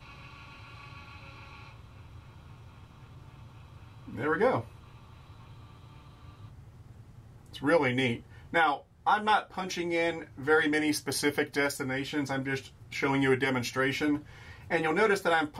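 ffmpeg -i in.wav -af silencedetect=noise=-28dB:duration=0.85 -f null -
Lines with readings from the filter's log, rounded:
silence_start: 0.00
silence_end: 4.19 | silence_duration: 4.19
silence_start: 4.60
silence_end: 7.64 | silence_duration: 3.04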